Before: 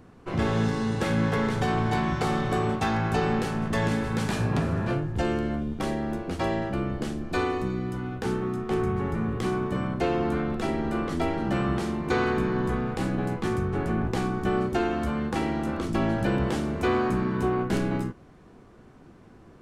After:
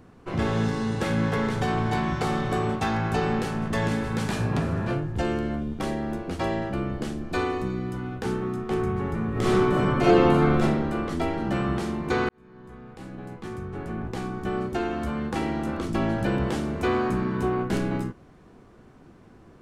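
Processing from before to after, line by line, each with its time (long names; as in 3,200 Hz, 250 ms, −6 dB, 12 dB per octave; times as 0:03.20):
0:09.31–0:10.61: thrown reverb, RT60 1.2 s, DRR −7.5 dB
0:12.29–0:15.49: fade in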